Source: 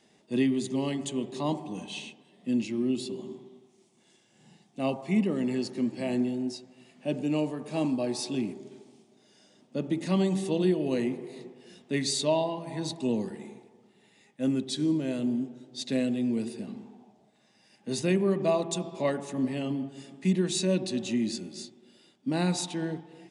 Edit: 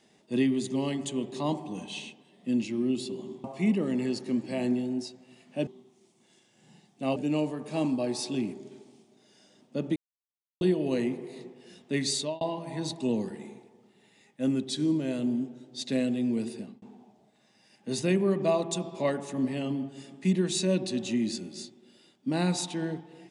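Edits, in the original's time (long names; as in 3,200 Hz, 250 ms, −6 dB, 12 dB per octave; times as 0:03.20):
0:03.44–0:04.93: move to 0:07.16
0:09.96–0:10.61: silence
0:12.15–0:12.41: fade out
0:16.57–0:16.82: fade out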